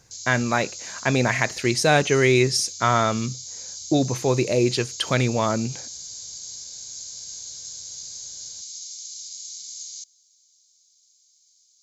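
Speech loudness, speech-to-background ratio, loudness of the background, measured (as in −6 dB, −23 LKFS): −22.0 LKFS, 12.0 dB, −34.0 LKFS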